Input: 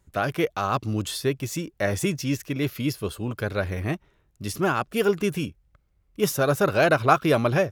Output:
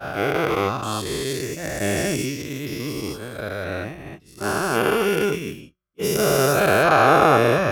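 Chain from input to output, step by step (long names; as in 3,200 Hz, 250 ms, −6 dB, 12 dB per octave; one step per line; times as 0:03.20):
every bin's largest magnitude spread in time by 480 ms
hum removal 182.7 Hz, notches 35
downward expander −14 dBFS
level −4.5 dB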